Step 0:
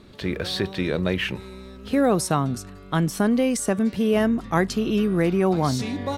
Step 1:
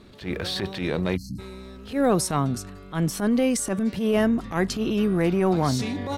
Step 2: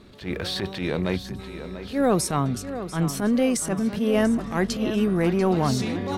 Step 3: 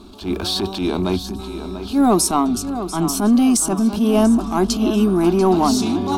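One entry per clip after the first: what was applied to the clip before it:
transient shaper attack -11 dB, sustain +1 dB; spectral selection erased 1.17–1.39 s, 310–4100 Hz
tape echo 689 ms, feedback 57%, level -10 dB, low-pass 4.6 kHz
static phaser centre 510 Hz, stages 6; in parallel at -10 dB: saturation -29.5 dBFS, distortion -8 dB; on the sum: trim +8.5 dB

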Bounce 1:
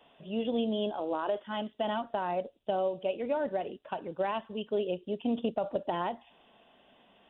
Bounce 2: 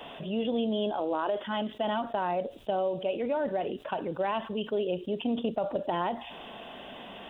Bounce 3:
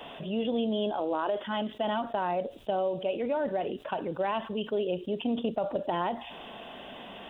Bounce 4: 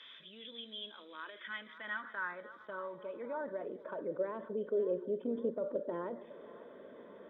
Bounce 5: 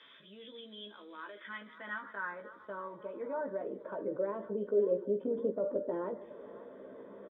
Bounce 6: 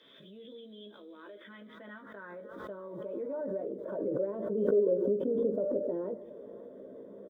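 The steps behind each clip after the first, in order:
level flattener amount 50%
no audible change
static phaser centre 2.8 kHz, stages 6; two-band feedback delay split 500 Hz, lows 152 ms, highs 547 ms, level -16 dB; band-pass sweep 3.1 kHz -> 520 Hz, 1.01–4.26 s; trim +5 dB
treble shelf 2.1 kHz -12 dB; doubling 15 ms -5 dB; trim +2.5 dB
high-order bell 1.6 kHz -12.5 dB 2.3 oct; swell ahead of each attack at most 37 dB/s; trim +2 dB

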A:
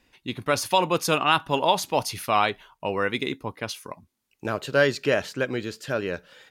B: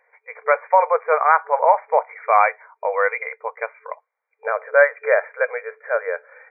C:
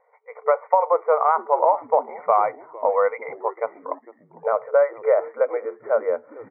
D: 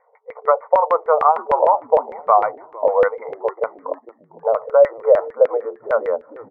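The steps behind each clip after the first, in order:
FFT band-pass 440–2400 Hz; trim +7 dB
Savitzky-Golay filter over 65 samples; compression, threshold -17 dBFS, peak gain reduction 8 dB; frequency-shifting echo 452 ms, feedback 39%, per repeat -110 Hz, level -20 dB; trim +3.5 dB
LFO low-pass saw down 6.6 Hz 450–2000 Hz

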